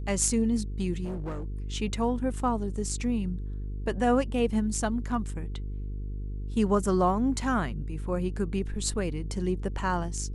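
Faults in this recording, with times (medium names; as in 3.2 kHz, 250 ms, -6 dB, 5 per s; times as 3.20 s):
buzz 50 Hz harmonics 9 -34 dBFS
1.04–1.44 s: clipped -30 dBFS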